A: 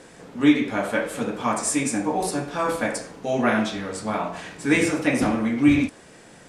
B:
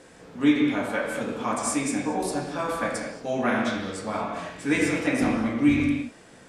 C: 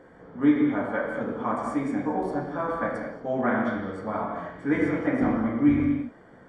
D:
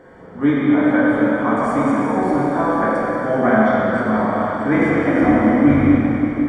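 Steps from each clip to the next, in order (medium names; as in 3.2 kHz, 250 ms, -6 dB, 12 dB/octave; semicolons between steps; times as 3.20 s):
reverberation, pre-delay 3 ms, DRR 2 dB; trim -4.5 dB
Savitzky-Golay filter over 41 samples
plate-style reverb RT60 4.8 s, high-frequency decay 0.9×, DRR -3.5 dB; trim +5.5 dB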